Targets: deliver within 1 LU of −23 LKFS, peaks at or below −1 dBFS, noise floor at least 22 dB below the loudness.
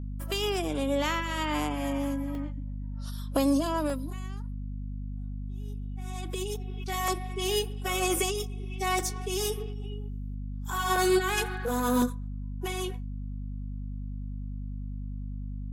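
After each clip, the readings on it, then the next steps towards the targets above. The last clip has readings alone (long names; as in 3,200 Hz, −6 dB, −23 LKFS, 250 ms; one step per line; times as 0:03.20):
number of dropouts 7; longest dropout 1.4 ms; mains hum 50 Hz; hum harmonics up to 250 Hz; level of the hum −33 dBFS; integrated loudness −31.5 LKFS; sample peak −13.5 dBFS; target loudness −23.0 LKFS
→ repair the gap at 0:00.65/0:02.35/0:03.90/0:07.08/0:08.99/0:10.96/0:12.02, 1.4 ms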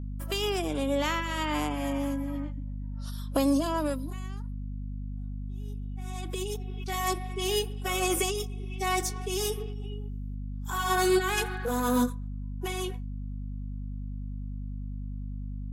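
number of dropouts 0; mains hum 50 Hz; hum harmonics up to 250 Hz; level of the hum −33 dBFS
→ mains-hum notches 50/100/150/200/250 Hz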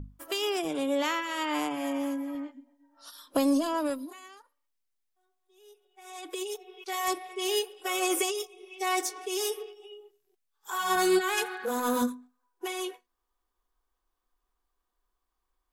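mains hum none found; integrated loudness −30.0 LKFS; sample peak −14.0 dBFS; target loudness −23.0 LKFS
→ level +7 dB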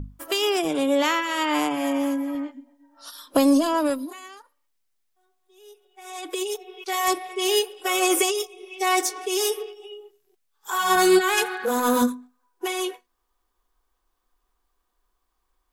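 integrated loudness −23.0 LKFS; sample peak −7.0 dBFS; background noise floor −75 dBFS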